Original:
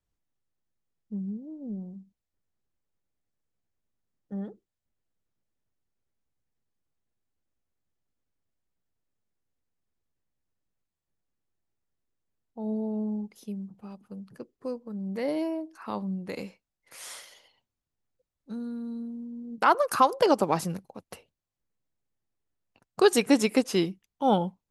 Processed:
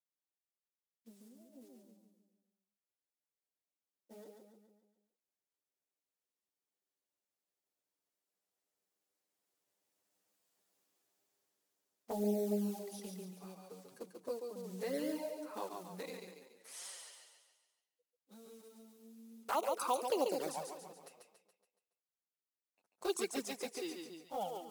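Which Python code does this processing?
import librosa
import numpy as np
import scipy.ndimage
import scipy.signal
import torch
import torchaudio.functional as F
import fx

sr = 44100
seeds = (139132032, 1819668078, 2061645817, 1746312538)

p1 = fx.block_float(x, sr, bits=5)
p2 = fx.doppler_pass(p1, sr, speed_mps=17, closest_m=12.0, pass_at_s=10.66)
p3 = scipy.signal.sosfilt(scipy.signal.butter(2, 470.0, 'highpass', fs=sr, output='sos'), p2)
p4 = fx.peak_eq(p3, sr, hz=1600.0, db=-7.0, octaves=2.5)
p5 = p4 + fx.echo_feedback(p4, sr, ms=141, feedback_pct=49, wet_db=-4.5, dry=0)
p6 = fx.env_flanger(p5, sr, rest_ms=10.2, full_db=-44.0)
y = F.gain(torch.from_numpy(p6), 16.5).numpy()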